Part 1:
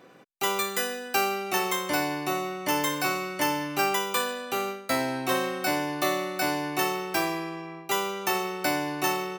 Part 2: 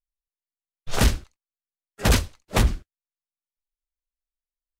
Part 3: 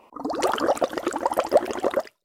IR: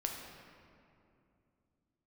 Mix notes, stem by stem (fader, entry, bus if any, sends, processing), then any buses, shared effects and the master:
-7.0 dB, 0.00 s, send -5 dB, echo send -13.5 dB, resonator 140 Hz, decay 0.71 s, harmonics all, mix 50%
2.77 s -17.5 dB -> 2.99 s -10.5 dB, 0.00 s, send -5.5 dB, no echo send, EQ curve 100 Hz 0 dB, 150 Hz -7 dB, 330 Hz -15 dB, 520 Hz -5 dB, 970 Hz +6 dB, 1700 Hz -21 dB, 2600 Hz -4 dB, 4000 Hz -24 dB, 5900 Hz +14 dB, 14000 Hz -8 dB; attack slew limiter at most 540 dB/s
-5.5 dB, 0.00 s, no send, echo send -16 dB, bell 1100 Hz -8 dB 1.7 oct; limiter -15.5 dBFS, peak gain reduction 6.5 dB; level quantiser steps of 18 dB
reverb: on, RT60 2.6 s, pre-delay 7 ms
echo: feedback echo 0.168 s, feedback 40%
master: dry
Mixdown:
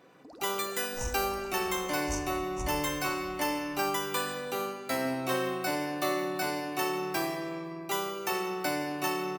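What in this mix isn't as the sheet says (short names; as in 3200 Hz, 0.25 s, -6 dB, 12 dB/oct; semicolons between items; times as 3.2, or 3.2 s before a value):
stem 2 -17.5 dB -> -25.0 dB; stem 3 -5.5 dB -> -13.5 dB; reverb return +8.0 dB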